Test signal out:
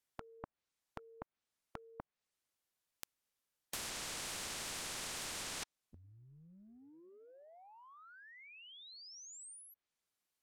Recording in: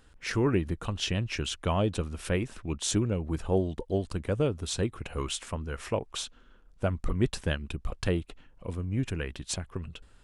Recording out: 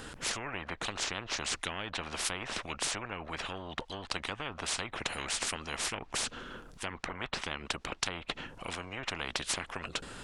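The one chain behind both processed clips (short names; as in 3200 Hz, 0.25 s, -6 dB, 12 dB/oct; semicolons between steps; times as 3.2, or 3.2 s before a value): treble ducked by the level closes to 1400 Hz, closed at -23.5 dBFS; spectral compressor 10:1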